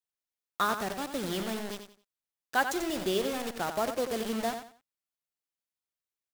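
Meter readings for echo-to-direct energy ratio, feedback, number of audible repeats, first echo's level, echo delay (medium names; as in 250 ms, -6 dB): -8.0 dB, 26%, 3, -8.5 dB, 90 ms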